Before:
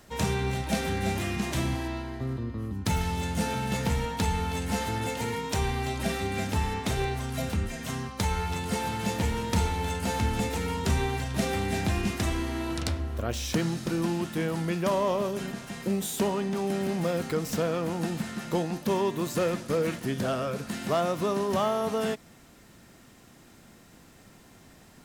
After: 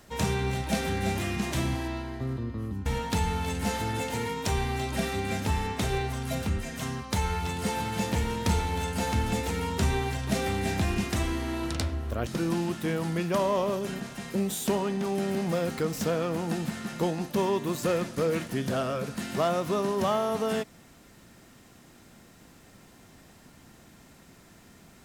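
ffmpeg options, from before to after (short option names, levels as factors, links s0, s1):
-filter_complex "[0:a]asplit=3[s0][s1][s2];[s0]atrim=end=2.862[s3];[s1]atrim=start=3.928:end=13.342[s4];[s2]atrim=start=13.788[s5];[s3][s4]acrossfade=d=0.004:c1=hsin:c2=hsin[s6];[s6][s5]acrossfade=d=0.004:c1=hsin:c2=hsin"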